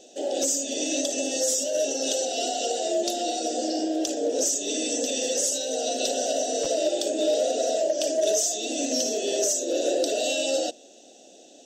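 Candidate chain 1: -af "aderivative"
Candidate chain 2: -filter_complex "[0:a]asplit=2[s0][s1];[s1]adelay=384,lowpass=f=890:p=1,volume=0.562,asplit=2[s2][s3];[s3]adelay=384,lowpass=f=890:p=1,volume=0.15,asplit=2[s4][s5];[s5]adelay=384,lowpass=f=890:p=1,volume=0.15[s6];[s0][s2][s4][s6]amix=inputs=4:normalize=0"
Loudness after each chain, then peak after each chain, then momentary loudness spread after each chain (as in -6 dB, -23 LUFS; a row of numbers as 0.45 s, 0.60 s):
-30.0 LUFS, -24.5 LUFS; -14.0 dBFS, -12.0 dBFS; 9 LU, 3 LU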